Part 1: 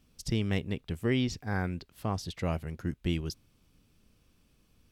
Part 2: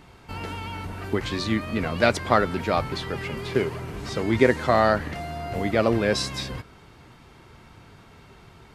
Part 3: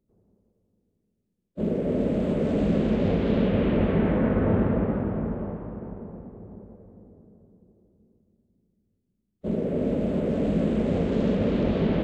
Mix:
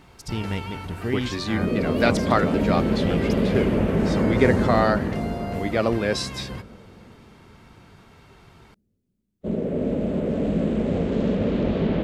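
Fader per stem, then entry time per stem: +0.5 dB, -1.0 dB, +1.0 dB; 0.00 s, 0.00 s, 0.00 s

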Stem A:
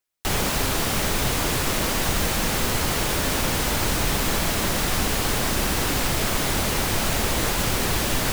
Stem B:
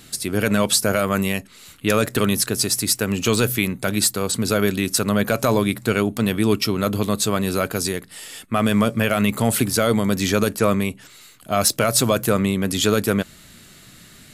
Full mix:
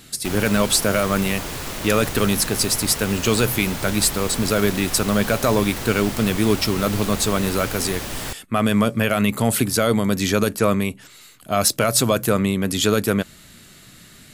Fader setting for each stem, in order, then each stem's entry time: -6.5 dB, 0.0 dB; 0.00 s, 0.00 s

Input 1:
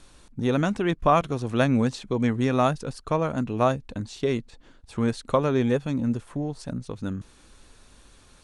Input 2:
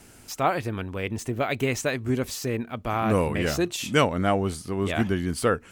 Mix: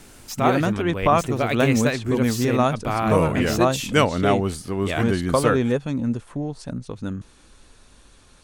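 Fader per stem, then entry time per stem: +1.5 dB, +2.5 dB; 0.00 s, 0.00 s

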